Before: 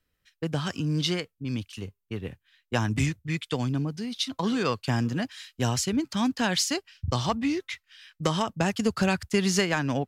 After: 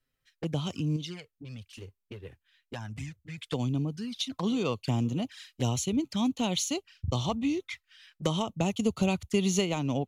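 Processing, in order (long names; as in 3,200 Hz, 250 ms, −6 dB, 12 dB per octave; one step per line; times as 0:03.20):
0:00.96–0:03.38: downward compressor 3 to 1, threshold −35 dBFS, peak gain reduction 11 dB
flanger swept by the level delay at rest 7.7 ms, full sweep at −26 dBFS
level −1.5 dB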